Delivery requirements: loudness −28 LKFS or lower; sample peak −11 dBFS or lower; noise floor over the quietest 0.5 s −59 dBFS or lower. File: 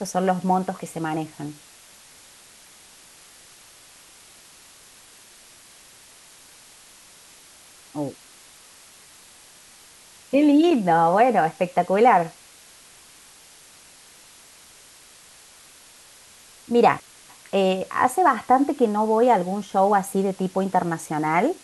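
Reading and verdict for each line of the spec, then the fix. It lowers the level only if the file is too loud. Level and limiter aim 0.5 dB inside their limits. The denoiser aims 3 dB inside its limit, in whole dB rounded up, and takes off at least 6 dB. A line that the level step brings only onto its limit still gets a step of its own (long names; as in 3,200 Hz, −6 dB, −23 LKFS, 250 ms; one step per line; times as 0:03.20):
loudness −21.0 LKFS: out of spec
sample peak −5.5 dBFS: out of spec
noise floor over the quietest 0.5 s −49 dBFS: out of spec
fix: broadband denoise 6 dB, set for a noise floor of −49 dBFS
level −7.5 dB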